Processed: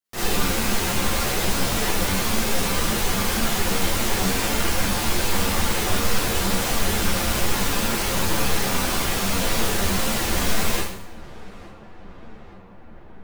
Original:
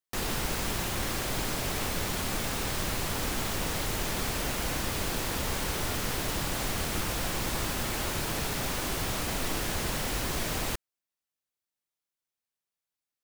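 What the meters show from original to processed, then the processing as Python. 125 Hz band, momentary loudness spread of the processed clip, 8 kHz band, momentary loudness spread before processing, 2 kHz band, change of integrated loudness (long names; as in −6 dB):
+7.0 dB, 1 LU, +8.5 dB, 0 LU, +8.5 dB, +8.5 dB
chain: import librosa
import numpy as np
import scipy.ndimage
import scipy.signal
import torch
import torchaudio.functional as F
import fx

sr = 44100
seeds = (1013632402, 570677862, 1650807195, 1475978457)

p1 = x + fx.echo_filtered(x, sr, ms=870, feedback_pct=78, hz=2300.0, wet_db=-19.5, dry=0)
p2 = fx.rev_schroeder(p1, sr, rt60_s=0.66, comb_ms=32, drr_db=-8.0)
p3 = fx.ensemble(p2, sr)
y = F.gain(torch.from_numpy(p3), 3.0).numpy()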